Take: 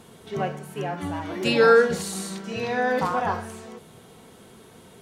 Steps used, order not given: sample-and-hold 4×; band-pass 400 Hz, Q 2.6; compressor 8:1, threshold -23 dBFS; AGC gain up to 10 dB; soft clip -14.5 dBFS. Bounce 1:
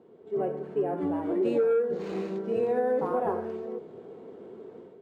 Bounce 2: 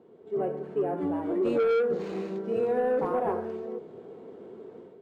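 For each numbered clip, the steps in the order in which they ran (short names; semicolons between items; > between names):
sample-and-hold > band-pass > soft clip > AGC > compressor; sample-and-hold > band-pass > AGC > soft clip > compressor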